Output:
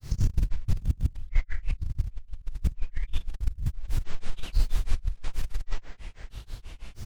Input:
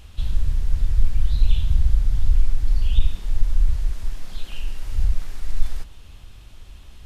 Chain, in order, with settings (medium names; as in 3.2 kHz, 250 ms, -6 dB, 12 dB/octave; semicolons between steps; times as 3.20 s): speakerphone echo 150 ms, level -10 dB; compressor with a negative ratio -20 dBFS, ratio -0.5; granulator 175 ms, grains 6.2 per s, pitch spread up and down by 12 st